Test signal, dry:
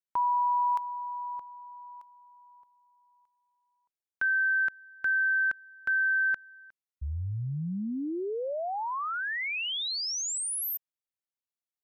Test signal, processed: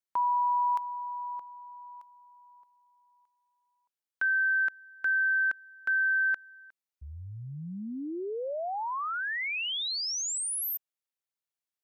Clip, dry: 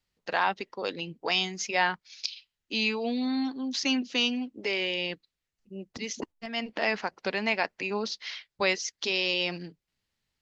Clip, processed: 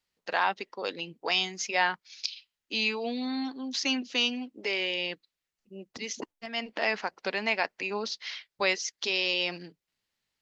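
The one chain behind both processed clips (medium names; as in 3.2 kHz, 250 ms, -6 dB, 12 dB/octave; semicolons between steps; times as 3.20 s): bass shelf 180 Hz -11.5 dB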